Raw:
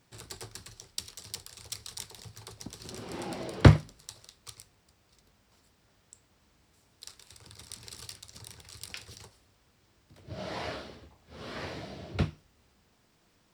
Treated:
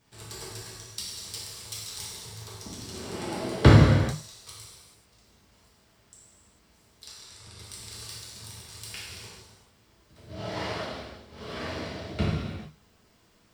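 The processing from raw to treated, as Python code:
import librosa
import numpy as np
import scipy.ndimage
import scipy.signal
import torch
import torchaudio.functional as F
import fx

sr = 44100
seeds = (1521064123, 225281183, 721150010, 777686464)

y = fx.lowpass(x, sr, hz=10000.0, slope=12, at=(7.07, 7.58), fade=0.02)
y = fx.rev_gated(y, sr, seeds[0], gate_ms=470, shape='falling', drr_db=-6.5)
y = y * 10.0 ** (-2.5 / 20.0)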